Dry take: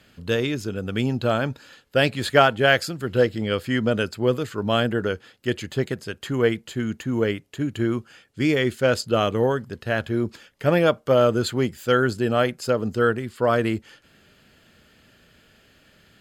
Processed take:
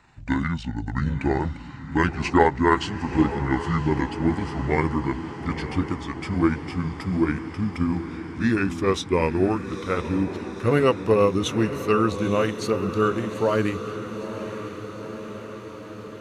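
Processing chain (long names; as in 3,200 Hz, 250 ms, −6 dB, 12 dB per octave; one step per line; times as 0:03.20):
pitch glide at a constant tempo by −10 semitones ending unshifted
feedback delay with all-pass diffusion 922 ms, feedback 67%, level −11 dB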